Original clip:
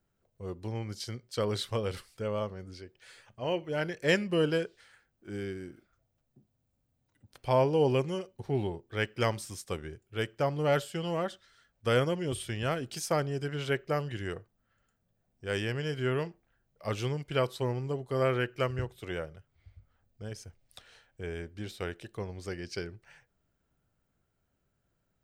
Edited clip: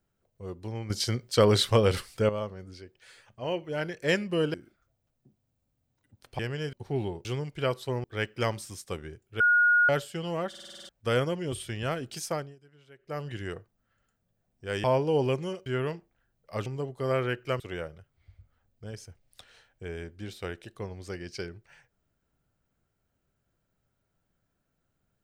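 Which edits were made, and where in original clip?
0.90–2.29 s: gain +10 dB
4.54–5.65 s: delete
7.50–8.32 s: swap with 15.64–15.98 s
10.20–10.69 s: bleep 1.44 kHz -18 dBFS
11.29 s: stutter in place 0.05 s, 8 plays
13.04–14.10 s: dip -24 dB, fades 0.32 s
16.98–17.77 s: move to 8.84 s
18.71–18.98 s: delete

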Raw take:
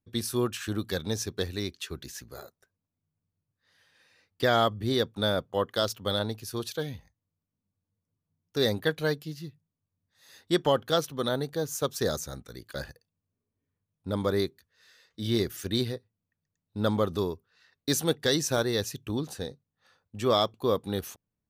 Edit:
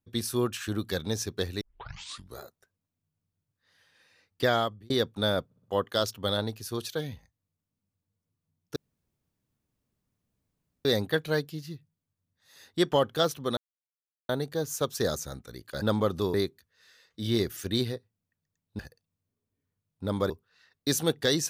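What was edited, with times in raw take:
1.61 s: tape start 0.78 s
4.45–4.90 s: fade out linear
5.45 s: stutter 0.06 s, 4 plays
8.58 s: insert room tone 2.09 s
11.30 s: insert silence 0.72 s
12.83–14.34 s: swap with 16.79–17.31 s

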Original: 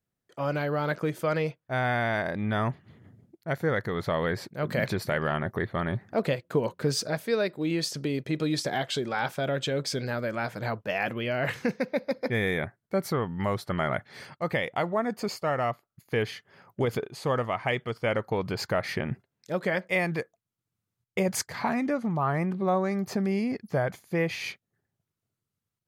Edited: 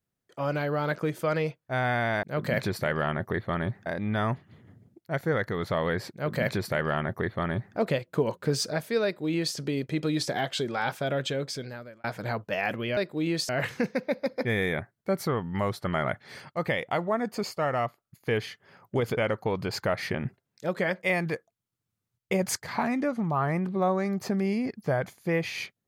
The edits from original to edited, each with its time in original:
4.49–6.12 s: copy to 2.23 s
7.41–7.93 s: copy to 11.34 s
9.60–10.41 s: fade out
17.02–18.03 s: delete

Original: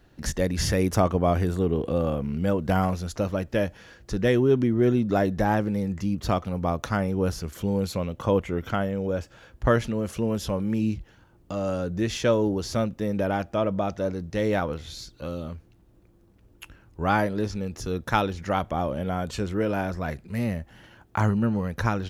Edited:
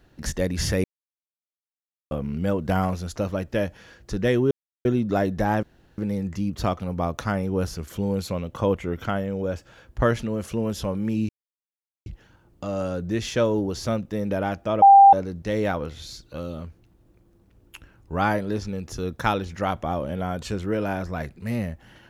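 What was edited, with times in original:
0.84–2.11 s: mute
4.51–4.85 s: mute
5.63 s: insert room tone 0.35 s
10.94 s: insert silence 0.77 s
13.70–14.01 s: bleep 792 Hz -7 dBFS

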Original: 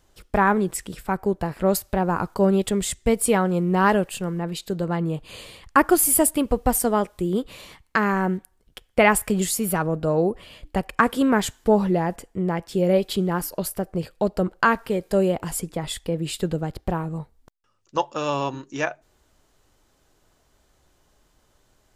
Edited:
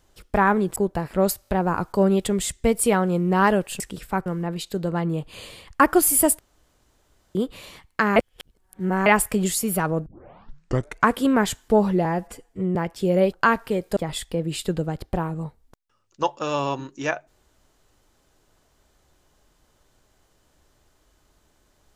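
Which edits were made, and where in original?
0.76–1.22 s: move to 4.22 s
1.89 s: stutter 0.02 s, 3 plays
6.35–7.31 s: room tone
8.12–9.02 s: reverse
10.02 s: tape start 1.05 s
12.01–12.48 s: stretch 1.5×
13.05–14.52 s: delete
15.16–15.71 s: delete

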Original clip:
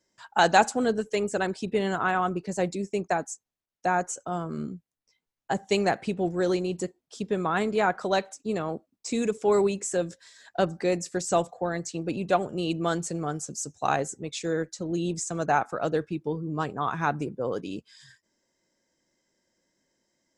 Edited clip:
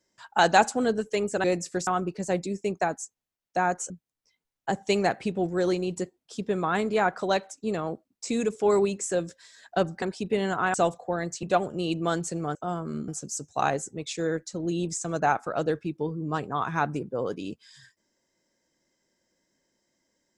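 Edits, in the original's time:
1.44–2.16 s: swap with 10.84–11.27 s
4.19–4.72 s: move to 13.34 s
11.96–12.22 s: delete

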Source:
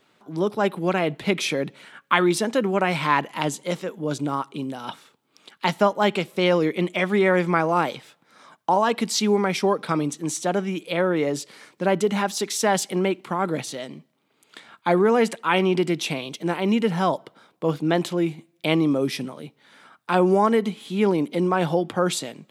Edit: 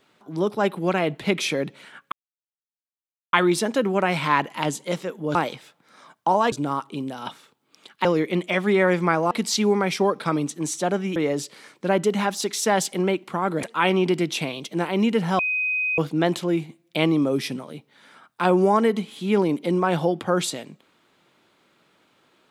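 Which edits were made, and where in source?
2.12 s: insert silence 1.21 s
5.67–6.51 s: delete
7.77–8.94 s: move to 4.14 s
10.79–11.13 s: delete
13.60–15.32 s: delete
17.08–17.67 s: bleep 2.51 kHz -21 dBFS

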